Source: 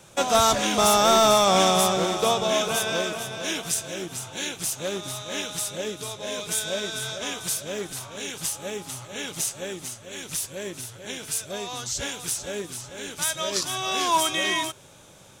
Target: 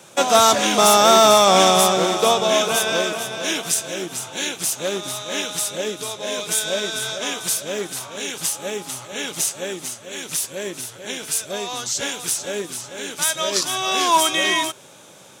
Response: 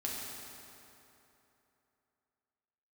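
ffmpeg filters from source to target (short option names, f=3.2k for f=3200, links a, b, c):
-af "highpass=190,volume=5.5dB"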